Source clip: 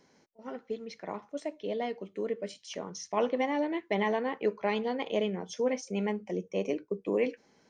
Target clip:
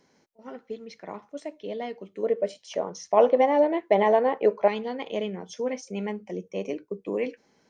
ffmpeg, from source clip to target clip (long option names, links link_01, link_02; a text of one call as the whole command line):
ffmpeg -i in.wav -filter_complex "[0:a]asettb=1/sr,asplit=3[link_01][link_02][link_03];[link_01]atrim=end=2.234[link_04];[link_02]atrim=start=2.23:end=4.68,asetpts=PTS-STARTPTS,afade=type=in:duration=0.004:curve=qsin,afade=type=out:start_time=2.446:duration=0.004:curve=qsin,equalizer=frequency=630:width=0.97:gain=13[link_05];[link_03]atrim=start=4.676[link_06];[link_04][link_05]acrossfade=duration=0.004:curve1=hsin:curve2=qsin[link_07];[link_07][link_06]acrossfade=duration=0.004:curve1=qsin:curve2=hsin" out.wav